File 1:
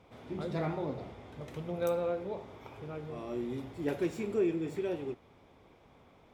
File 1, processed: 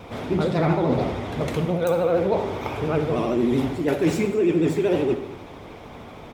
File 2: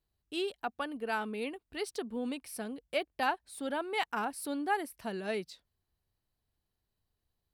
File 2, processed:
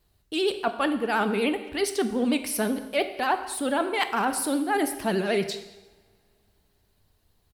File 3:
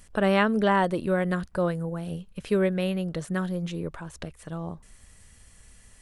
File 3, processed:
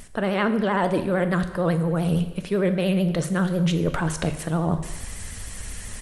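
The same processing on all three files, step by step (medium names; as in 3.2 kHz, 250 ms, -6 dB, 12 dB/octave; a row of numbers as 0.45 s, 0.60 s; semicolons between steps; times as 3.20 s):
reverse; compression 12:1, threshold -37 dBFS; reverse; vibrato 13 Hz 99 cents; speakerphone echo 210 ms, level -20 dB; two-slope reverb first 0.93 s, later 3.2 s, from -25 dB, DRR 8.5 dB; peak normalisation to -9 dBFS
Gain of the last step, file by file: +19.5 dB, +15.5 dB, +17.5 dB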